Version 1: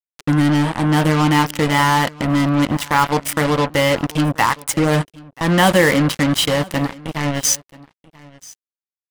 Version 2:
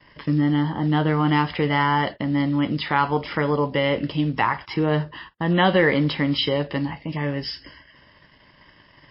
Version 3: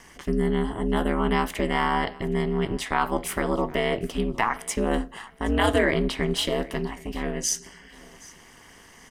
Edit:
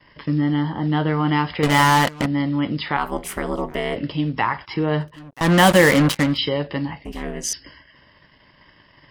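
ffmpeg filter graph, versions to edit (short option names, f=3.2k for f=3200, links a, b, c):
-filter_complex "[0:a]asplit=2[a][b];[2:a]asplit=2[c][d];[1:a]asplit=5[e][f][g][h][i];[e]atrim=end=1.632[j];[a]atrim=start=1.628:end=2.262[k];[f]atrim=start=2.258:end=2.972[l];[c]atrim=start=2.968:end=3.962[m];[g]atrim=start=3.958:end=5.24[n];[b]atrim=start=5:end=6.38[o];[h]atrim=start=6.14:end=7.052[p];[d]atrim=start=7.048:end=7.532[q];[i]atrim=start=7.528[r];[j][k]acrossfade=d=0.004:c1=hsin:c2=hsin[s];[s][l]acrossfade=d=0.004:c1=hsin:c2=hsin[t];[t][m]acrossfade=d=0.004:c1=hsin:c2=hsin[u];[u][n]acrossfade=d=0.004:c1=hsin:c2=hsin[v];[v][o]acrossfade=d=0.24:c1=tri:c2=tri[w];[w][p]acrossfade=d=0.24:c1=tri:c2=tri[x];[x][q]acrossfade=d=0.004:c1=hsin:c2=hsin[y];[y][r]acrossfade=d=0.004:c1=hsin:c2=hsin"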